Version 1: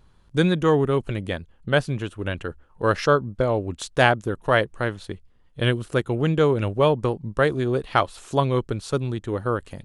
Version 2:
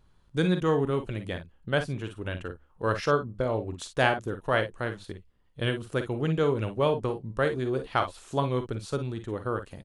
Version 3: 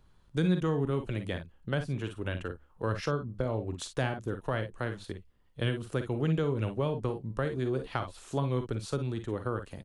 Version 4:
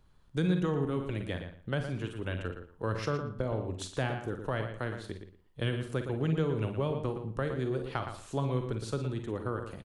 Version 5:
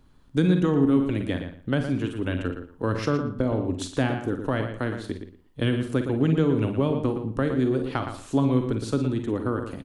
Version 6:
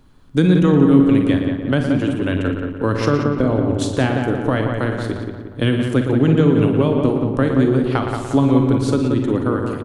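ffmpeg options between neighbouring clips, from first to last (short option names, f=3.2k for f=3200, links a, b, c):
-af "aecho=1:1:44|55:0.266|0.282,volume=-6.5dB"
-filter_complex "[0:a]acrossover=split=260[a][b];[b]acompressor=threshold=-31dB:ratio=5[c];[a][c]amix=inputs=2:normalize=0"
-filter_complex "[0:a]asplit=2[a][b];[b]adelay=116,lowpass=f=4.1k:p=1,volume=-8dB,asplit=2[c][d];[d]adelay=116,lowpass=f=4.1k:p=1,volume=0.19,asplit=2[e][f];[f]adelay=116,lowpass=f=4.1k:p=1,volume=0.19[g];[a][c][e][g]amix=inputs=4:normalize=0,volume=-1.5dB"
-af "equalizer=f=270:t=o:w=0.47:g=11,volume=5.5dB"
-filter_complex "[0:a]bandreject=f=50:t=h:w=6,bandreject=f=100:t=h:w=6,asplit=2[a][b];[b]adelay=178,lowpass=f=2.5k:p=1,volume=-5dB,asplit=2[c][d];[d]adelay=178,lowpass=f=2.5k:p=1,volume=0.53,asplit=2[e][f];[f]adelay=178,lowpass=f=2.5k:p=1,volume=0.53,asplit=2[g][h];[h]adelay=178,lowpass=f=2.5k:p=1,volume=0.53,asplit=2[i][j];[j]adelay=178,lowpass=f=2.5k:p=1,volume=0.53,asplit=2[k][l];[l]adelay=178,lowpass=f=2.5k:p=1,volume=0.53,asplit=2[m][n];[n]adelay=178,lowpass=f=2.5k:p=1,volume=0.53[o];[a][c][e][g][i][k][m][o]amix=inputs=8:normalize=0,volume=6.5dB"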